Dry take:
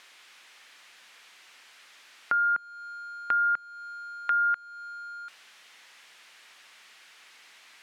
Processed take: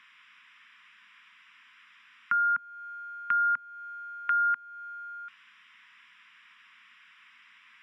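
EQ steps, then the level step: polynomial smoothing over 25 samples; Chebyshev band-stop 250–1000 Hz, order 4; 0.0 dB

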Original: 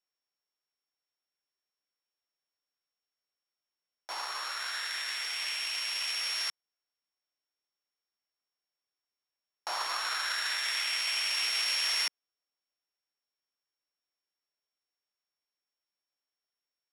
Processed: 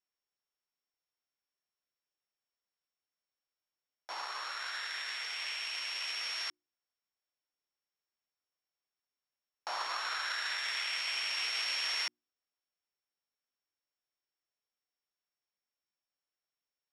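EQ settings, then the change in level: air absorption 60 m; notches 60/120/180/240/300/360 Hz; -2.0 dB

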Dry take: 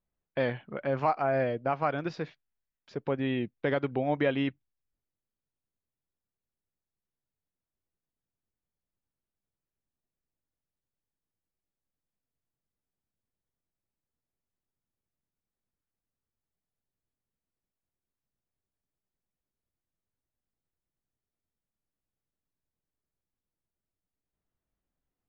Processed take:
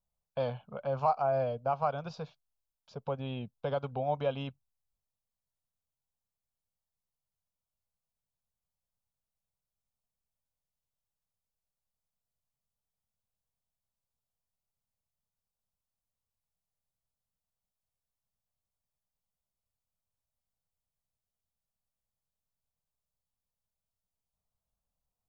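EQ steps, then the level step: fixed phaser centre 790 Hz, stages 4; 0.0 dB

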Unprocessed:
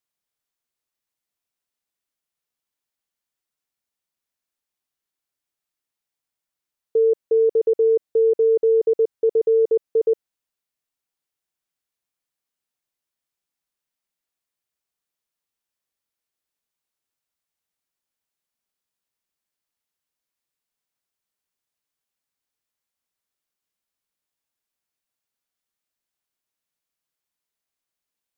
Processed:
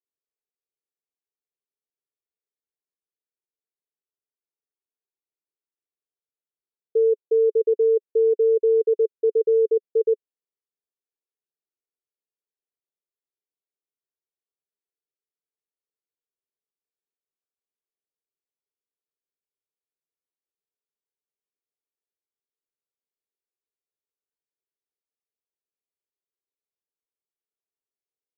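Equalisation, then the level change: band-pass 420 Hz, Q 4.6; 0.0 dB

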